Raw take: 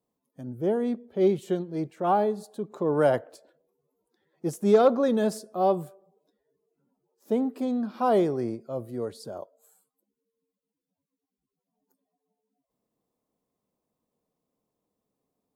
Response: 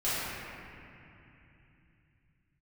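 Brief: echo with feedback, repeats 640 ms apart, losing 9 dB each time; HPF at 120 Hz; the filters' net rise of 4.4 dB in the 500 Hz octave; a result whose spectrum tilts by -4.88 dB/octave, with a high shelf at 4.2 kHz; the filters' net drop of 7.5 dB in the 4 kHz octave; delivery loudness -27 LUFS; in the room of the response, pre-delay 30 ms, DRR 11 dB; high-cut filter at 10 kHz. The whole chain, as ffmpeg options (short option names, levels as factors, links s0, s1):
-filter_complex "[0:a]highpass=120,lowpass=10000,equalizer=f=500:t=o:g=5.5,equalizer=f=4000:t=o:g=-7,highshelf=f=4200:g=-5,aecho=1:1:640|1280|1920|2560:0.355|0.124|0.0435|0.0152,asplit=2[s0][s1];[1:a]atrim=start_sample=2205,adelay=30[s2];[s1][s2]afir=irnorm=-1:irlink=0,volume=0.0794[s3];[s0][s3]amix=inputs=2:normalize=0,volume=0.631"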